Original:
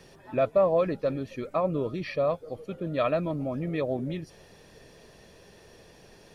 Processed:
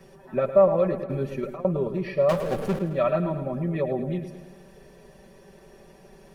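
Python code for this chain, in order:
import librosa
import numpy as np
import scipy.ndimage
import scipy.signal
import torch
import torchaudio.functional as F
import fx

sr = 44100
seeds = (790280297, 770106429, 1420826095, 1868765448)

p1 = fx.peak_eq(x, sr, hz=4300.0, db=-10.0, octaves=1.8)
p2 = p1 + 1.0 * np.pad(p1, (int(5.2 * sr / 1000.0), 0))[:len(p1)]
p3 = fx.over_compress(p2, sr, threshold_db=-30.0, ratio=-0.5, at=(0.98, 1.65))
p4 = fx.power_curve(p3, sr, exponent=0.5, at=(2.29, 2.79))
y = p4 + fx.echo_feedback(p4, sr, ms=108, feedback_pct=57, wet_db=-11.0, dry=0)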